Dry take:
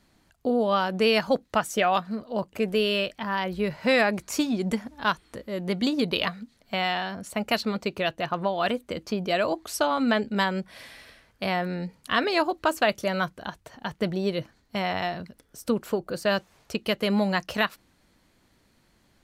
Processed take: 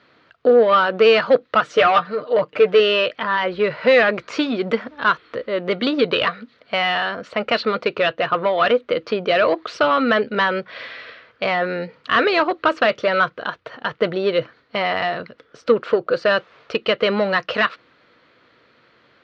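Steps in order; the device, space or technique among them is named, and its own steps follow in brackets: 1.64–2.8 comb 6.6 ms, depth 66%; overdrive pedal into a guitar cabinet (overdrive pedal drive 17 dB, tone 3700 Hz, clips at -9 dBFS; speaker cabinet 87–4100 Hz, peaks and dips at 130 Hz +5 dB, 190 Hz -5 dB, 480 Hz +8 dB, 830 Hz -7 dB, 1300 Hz +6 dB); gain +1.5 dB

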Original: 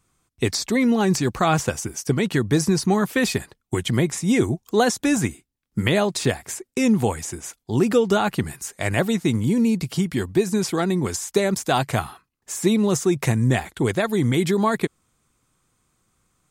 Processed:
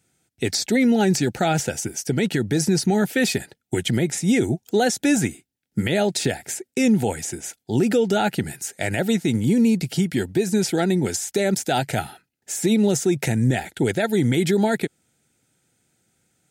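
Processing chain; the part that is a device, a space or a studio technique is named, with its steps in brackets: PA system with an anti-feedback notch (HPF 110 Hz; Butterworth band-stop 1100 Hz, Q 2.3; limiter -12.5 dBFS, peak gain reduction 7 dB); gain +2 dB

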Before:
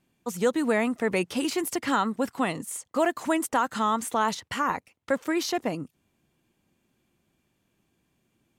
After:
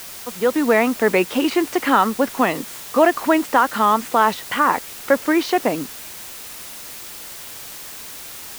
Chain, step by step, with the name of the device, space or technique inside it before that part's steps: dictaphone (BPF 250–3000 Hz; AGC; wow and flutter; white noise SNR 15 dB)

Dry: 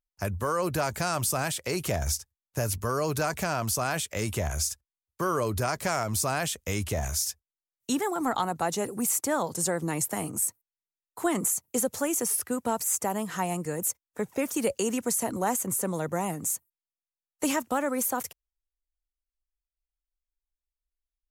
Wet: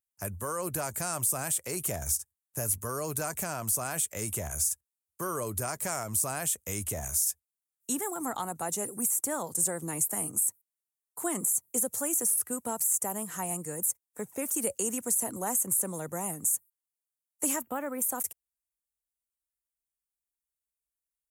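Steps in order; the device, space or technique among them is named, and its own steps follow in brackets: de-esser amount 45%; 17.61–18.02 band shelf 6900 Hz -15.5 dB; budget condenser microphone (HPF 68 Hz; resonant high shelf 6400 Hz +11.5 dB, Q 1.5); gain -6.5 dB

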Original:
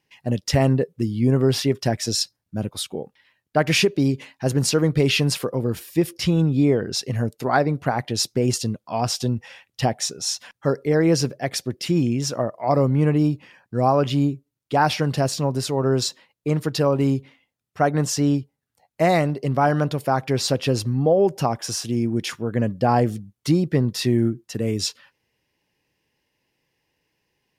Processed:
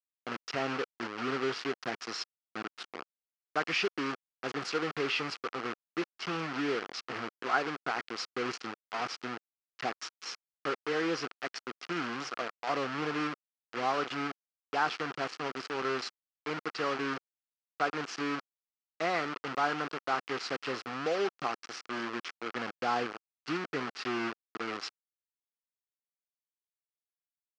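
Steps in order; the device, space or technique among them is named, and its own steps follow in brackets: hand-held game console (bit-crush 4-bit; speaker cabinet 410–4600 Hz, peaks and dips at 590 Hz -9 dB, 910 Hz -4 dB, 1300 Hz +7 dB, 3700 Hz -7 dB); gain -8.5 dB

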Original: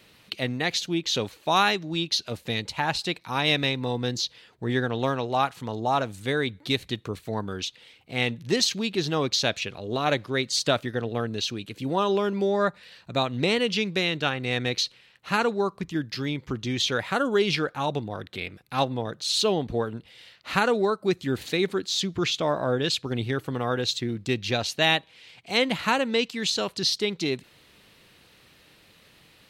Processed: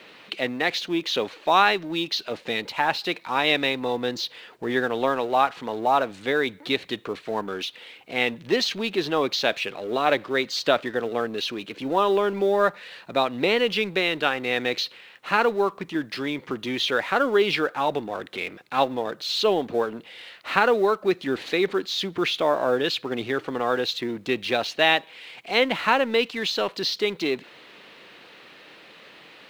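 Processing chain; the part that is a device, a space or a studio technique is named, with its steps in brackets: phone line with mismatched companding (BPF 310–3200 Hz; G.711 law mismatch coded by mu); gain +3.5 dB

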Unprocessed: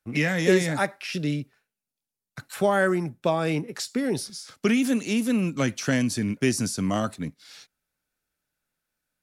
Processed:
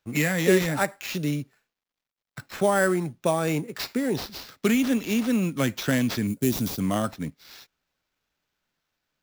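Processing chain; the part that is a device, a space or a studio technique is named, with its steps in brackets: early companding sampler (sample-rate reducer 9400 Hz, jitter 0%; companded quantiser 8-bit); 6.27–6.8 EQ curve 290 Hz 0 dB, 1900 Hz -12 dB, 11000 Hz +6 dB

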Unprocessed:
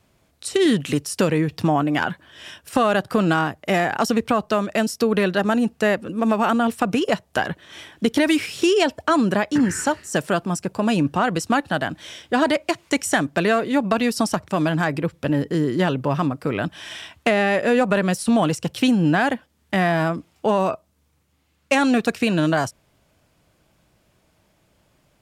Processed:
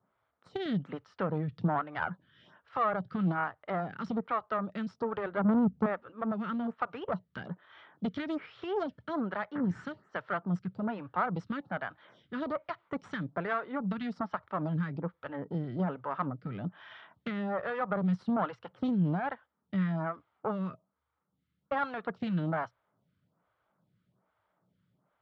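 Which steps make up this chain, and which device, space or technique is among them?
5.17–5.86 tilt -4 dB/oct; vibe pedal into a guitar amplifier (photocell phaser 1.2 Hz; tube stage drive 15 dB, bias 0.75; speaker cabinet 94–3400 Hz, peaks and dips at 120 Hz +7 dB, 180 Hz +8 dB, 330 Hz -4 dB, 910 Hz +4 dB, 1300 Hz +9 dB, 2600 Hz -9 dB); gain -8 dB

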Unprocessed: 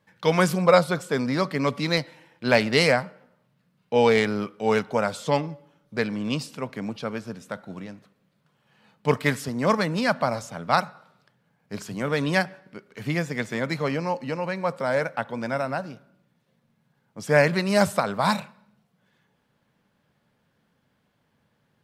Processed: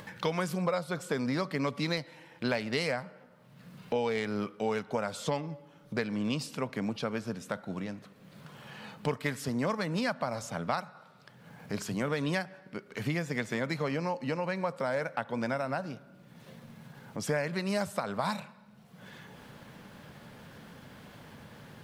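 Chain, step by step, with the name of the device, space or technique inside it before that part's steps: upward and downward compression (upward compressor, threshold -33 dBFS; compressor 6:1, threshold -28 dBFS, peak gain reduction 16 dB)

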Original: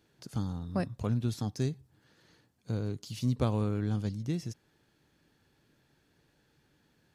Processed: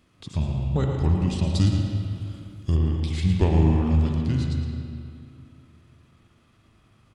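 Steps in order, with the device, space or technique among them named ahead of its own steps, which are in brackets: monster voice (pitch shift -5 st; low shelf 120 Hz +3.5 dB; echo 0.111 s -9.5 dB; reverb RT60 2.2 s, pre-delay 0.107 s, DRR 7.5 dB); 1.54–2.76 tone controls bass +3 dB, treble +10 dB; spring tank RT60 2 s, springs 38/60 ms, chirp 50 ms, DRR 3 dB; gain +6 dB

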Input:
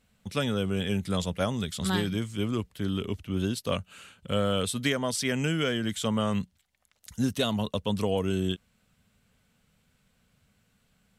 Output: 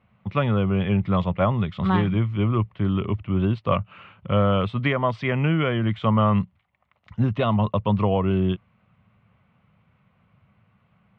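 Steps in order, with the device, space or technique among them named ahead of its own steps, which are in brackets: bass cabinet (speaker cabinet 86–2300 Hz, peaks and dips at 110 Hz +6 dB, 260 Hz -8 dB, 450 Hz -7 dB, 1100 Hz +6 dB, 1600 Hz -9 dB); gain +8.5 dB

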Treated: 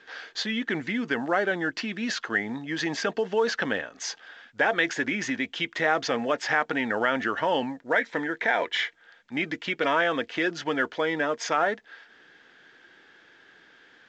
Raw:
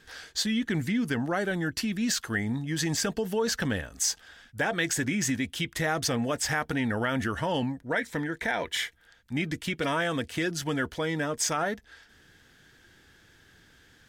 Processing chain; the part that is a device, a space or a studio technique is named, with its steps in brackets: telephone (BPF 360–3100 Hz; gain +5.5 dB; µ-law 128 kbps 16000 Hz)

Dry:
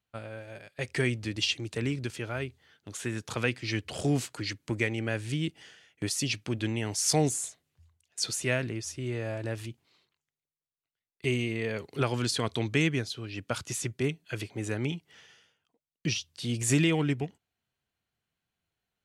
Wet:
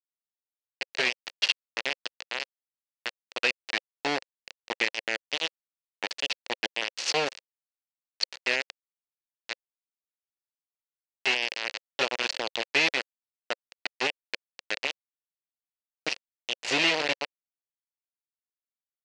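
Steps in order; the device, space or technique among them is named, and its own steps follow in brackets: hand-held game console (bit-crush 4-bit; speaker cabinet 450–5800 Hz, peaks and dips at 530 Hz +4 dB, 1200 Hz -4 dB, 1900 Hz +4 dB, 2700 Hz +7 dB, 4400 Hz +5 dB)

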